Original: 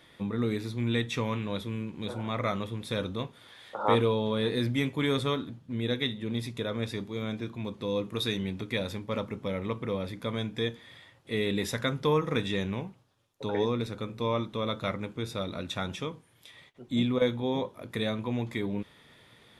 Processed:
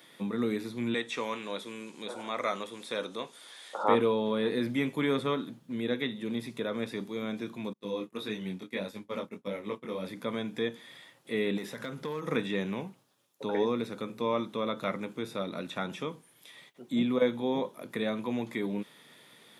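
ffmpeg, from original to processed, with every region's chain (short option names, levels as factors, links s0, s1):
-filter_complex "[0:a]asettb=1/sr,asplit=3[s0][s1][s2];[s0]atrim=end=0.944[s3];[s1]atrim=start=0.94:end=3.84,asetpts=PTS-STARTPTS,afade=t=in:d=0.004:c=qsin,afade=t=out:st=2.896:d=0.004:c=qsin,lowpass=f=9600:w=0.5412,lowpass=f=9600:w=1.3066,bass=f=250:g=-14,treble=f=4000:g=12[s4];[s2]atrim=start=3.836[s5];[s3][s4]acrossfade=d=0.004:c1=hsin:c2=qsin[s6];[s6][s5]acrossfade=d=0.004:c1=qsin:c2=hsin,asettb=1/sr,asplit=3[s7][s8][s9];[s7]atrim=end=7.734[s10];[s8]atrim=start=7.73:end=10.05,asetpts=PTS-STARTPTS,afade=t=in:d=0.004:c=qsin,afade=t=out:st=2.316:d=0.004:c=qsin,flanger=delay=18.5:depth=4.5:speed=1.6,agate=range=0.0224:threshold=0.0158:ratio=3:release=100:detection=peak[s11];[s9]atrim=start=10.046[s12];[s10][s11]acrossfade=d=0.004:c1=hsin:c2=qsin[s13];[s13][s12]acrossfade=d=0.004:c1=qsin:c2=hsin,asettb=1/sr,asplit=3[s14][s15][s16];[s14]atrim=end=11.574[s17];[s15]atrim=start=11.57:end=12.27,asetpts=PTS-STARTPTS,afade=t=in:d=0.004:c=qsin,afade=t=out:st=0.696:d=0.004:c=qsin,acompressor=threshold=0.0282:ratio=6:attack=3.2:release=140:knee=1:detection=peak,asoftclip=type=hard:threshold=0.0335[s18];[s16]atrim=start=12.266[s19];[s17][s18]acrossfade=d=0.004:c1=hsin:c2=qsin[s20];[s20][s19]acrossfade=d=0.004:c1=qsin:c2=hsin,highpass=f=160:w=0.5412,highpass=f=160:w=1.3066,highshelf=f=7100:g=11.5,acrossover=split=2800[s21][s22];[s22]acompressor=threshold=0.00316:ratio=4:attack=1:release=60[s23];[s21][s23]amix=inputs=2:normalize=0"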